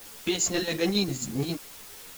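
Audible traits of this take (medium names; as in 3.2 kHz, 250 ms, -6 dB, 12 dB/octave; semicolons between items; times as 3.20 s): chopped level 7.4 Hz, depth 60%, duty 60%; a quantiser's noise floor 8-bit, dither triangular; a shimmering, thickened sound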